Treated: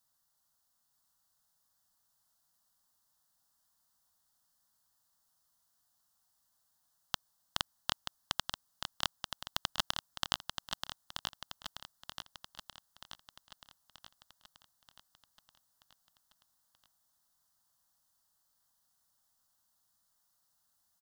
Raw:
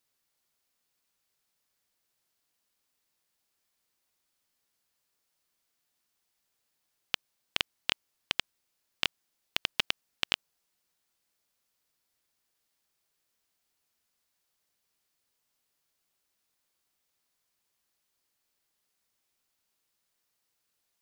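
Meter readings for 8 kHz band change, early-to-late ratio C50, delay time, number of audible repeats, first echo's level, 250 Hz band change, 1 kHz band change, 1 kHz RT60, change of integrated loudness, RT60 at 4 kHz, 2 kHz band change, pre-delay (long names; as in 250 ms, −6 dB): +3.0 dB, no reverb audible, 931 ms, 6, −6.0 dB, −1.0 dB, +3.5 dB, no reverb audible, −6.0 dB, no reverb audible, −7.0 dB, no reverb audible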